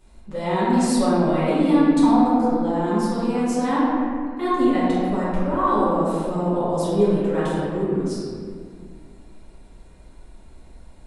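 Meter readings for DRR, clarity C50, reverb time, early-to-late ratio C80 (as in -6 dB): -12.0 dB, -3.5 dB, 2.0 s, -1.5 dB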